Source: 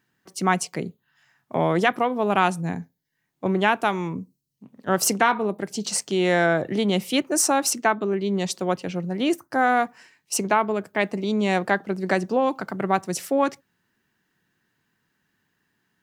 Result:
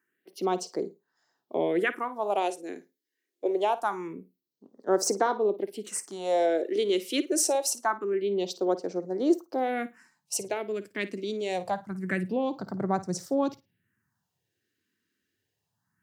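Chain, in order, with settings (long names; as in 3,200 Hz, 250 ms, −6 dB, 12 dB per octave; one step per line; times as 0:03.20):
high-pass filter sweep 380 Hz → 100 Hz, 0:09.67–0:10.57
all-pass phaser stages 4, 0.25 Hz, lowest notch 130–2,800 Hz
flutter between parallel walls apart 9.3 metres, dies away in 0.21 s
level −5.5 dB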